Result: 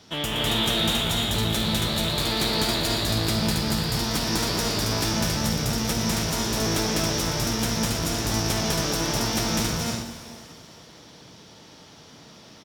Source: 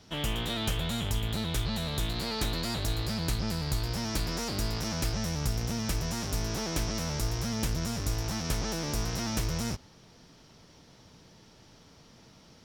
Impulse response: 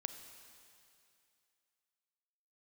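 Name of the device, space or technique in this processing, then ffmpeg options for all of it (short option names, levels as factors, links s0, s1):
stadium PA: -filter_complex "[0:a]highpass=f=170:p=1,equalizer=f=3500:t=o:w=0.23:g=3.5,aecho=1:1:201.2|274.1:0.891|0.708[s0];[1:a]atrim=start_sample=2205[s1];[s0][s1]afir=irnorm=-1:irlink=0,volume=2.37"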